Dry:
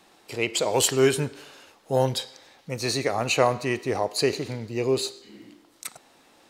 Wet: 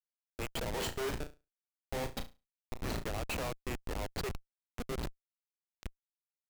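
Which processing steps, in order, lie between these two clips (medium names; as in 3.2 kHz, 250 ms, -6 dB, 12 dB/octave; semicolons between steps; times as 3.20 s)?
Bessel high-pass 690 Hz, order 8; treble shelf 4.9 kHz -12 dB; Schmitt trigger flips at -28 dBFS; 0.73–3.04 s: flutter echo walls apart 6 m, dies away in 0.25 s; trim -2.5 dB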